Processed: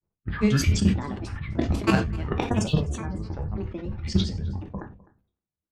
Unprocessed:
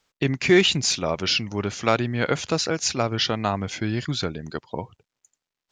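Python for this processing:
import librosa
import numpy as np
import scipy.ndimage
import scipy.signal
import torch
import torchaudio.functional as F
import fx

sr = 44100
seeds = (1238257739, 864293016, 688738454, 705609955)

y = fx.octave_divider(x, sr, octaves=1, level_db=2.0)
y = fx.peak_eq(y, sr, hz=170.0, db=11.5, octaves=0.79)
y = fx.level_steps(y, sr, step_db=15)
y = fx.spec_box(y, sr, start_s=2.5, length_s=0.77, low_hz=1300.0, high_hz=4000.0, gain_db=-25)
y = fx.env_lowpass(y, sr, base_hz=830.0, full_db=-14.5)
y = fx.granulator(y, sr, seeds[0], grain_ms=104.0, per_s=20.0, spray_ms=100.0, spread_st=12)
y = fx.low_shelf(y, sr, hz=82.0, db=5.5)
y = y + 10.0 ** (-20.5 / 20.0) * np.pad(y, (int(256 * sr / 1000.0), 0))[:len(y)]
y = fx.rev_gated(y, sr, seeds[1], gate_ms=120, shape='falling', drr_db=4.5)
y = fx.sustainer(y, sr, db_per_s=110.0)
y = y * librosa.db_to_amplitude(-2.5)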